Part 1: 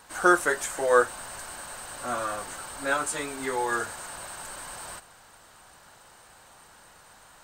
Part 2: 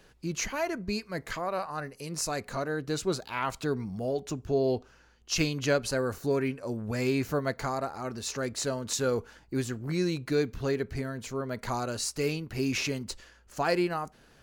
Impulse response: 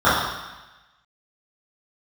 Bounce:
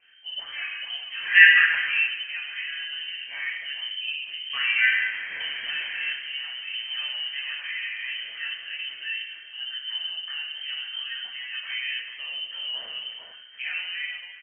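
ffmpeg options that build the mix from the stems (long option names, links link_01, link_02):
-filter_complex "[0:a]adelay=1100,volume=-2.5dB,asplit=3[link_01][link_02][link_03];[link_01]atrim=end=1.99,asetpts=PTS-STARTPTS,afade=type=out:start_time=1.986:duration=0.004:curve=hsin[link_04];[link_02]atrim=start=1.99:end=4.53,asetpts=PTS-STARTPTS,volume=0[link_05];[link_03]atrim=start=4.53,asetpts=PTS-STARTPTS,afade=type=in:duration=0.004:curve=hsin[link_06];[link_04][link_05][link_06]concat=n=3:v=0:a=1,asplit=2[link_07][link_08];[link_08]volume=-19dB[link_09];[1:a]acompressor=threshold=-32dB:ratio=6,volume=-12dB,asplit=3[link_10][link_11][link_12];[link_11]volume=-10.5dB[link_13];[link_12]volume=-3dB[link_14];[2:a]atrim=start_sample=2205[link_15];[link_09][link_13]amix=inputs=2:normalize=0[link_16];[link_16][link_15]afir=irnorm=-1:irlink=0[link_17];[link_14]aecho=0:1:448|896|1344:1|0.18|0.0324[link_18];[link_07][link_10][link_17][link_18]amix=inputs=4:normalize=0,lowshelf=frequency=66:gain=10.5,lowpass=frequency=2700:width_type=q:width=0.5098,lowpass=frequency=2700:width_type=q:width=0.6013,lowpass=frequency=2700:width_type=q:width=0.9,lowpass=frequency=2700:width_type=q:width=2.563,afreqshift=-3200"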